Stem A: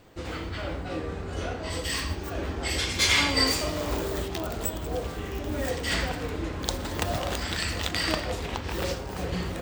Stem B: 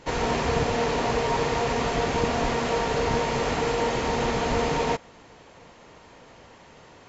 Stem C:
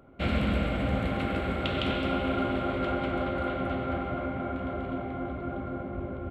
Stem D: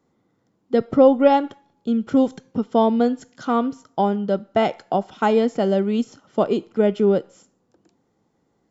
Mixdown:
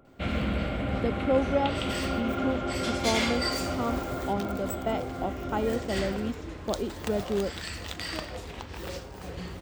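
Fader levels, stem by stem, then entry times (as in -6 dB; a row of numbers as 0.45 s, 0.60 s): -7.5 dB, mute, -2.0 dB, -11.5 dB; 0.05 s, mute, 0.00 s, 0.30 s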